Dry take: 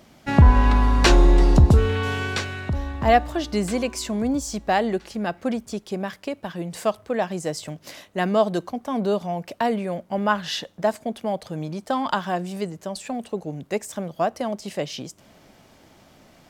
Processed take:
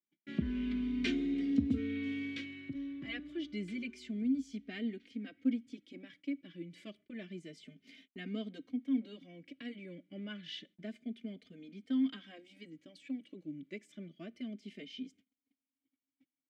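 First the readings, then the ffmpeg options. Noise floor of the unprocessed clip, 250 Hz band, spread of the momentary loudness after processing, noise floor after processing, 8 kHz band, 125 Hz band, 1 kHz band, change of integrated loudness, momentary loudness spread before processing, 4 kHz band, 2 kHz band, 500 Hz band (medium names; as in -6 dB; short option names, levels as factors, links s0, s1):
-54 dBFS, -9.5 dB, 18 LU, under -85 dBFS, under -25 dB, -26.0 dB, under -35 dB, -15.5 dB, 15 LU, -16.0 dB, -17.5 dB, -25.0 dB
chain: -filter_complex "[0:a]asplit=3[s0][s1][s2];[s0]bandpass=f=270:t=q:w=8,volume=1[s3];[s1]bandpass=f=2290:t=q:w=8,volume=0.501[s4];[s2]bandpass=f=3010:t=q:w=8,volume=0.355[s5];[s3][s4][s5]amix=inputs=3:normalize=0,agate=range=0.02:threshold=0.00141:ratio=16:detection=peak,asplit=2[s6][s7];[s7]adelay=3,afreqshift=0.29[s8];[s6][s8]amix=inputs=2:normalize=1"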